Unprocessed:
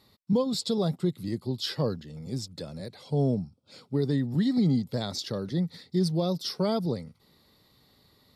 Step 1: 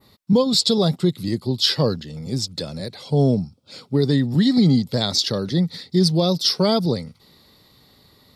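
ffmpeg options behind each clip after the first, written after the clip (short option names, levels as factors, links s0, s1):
-af "adynamicequalizer=threshold=0.00355:dfrequency=4400:dqfactor=0.72:tfrequency=4400:tqfactor=0.72:attack=5:release=100:ratio=0.375:range=3.5:mode=boostabove:tftype=bell,volume=2.51"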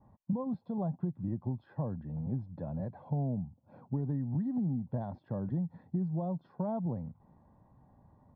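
-af "aecho=1:1:1.2:0.65,acompressor=threshold=0.0631:ratio=6,lowpass=f=1100:w=0.5412,lowpass=f=1100:w=1.3066,volume=0.473"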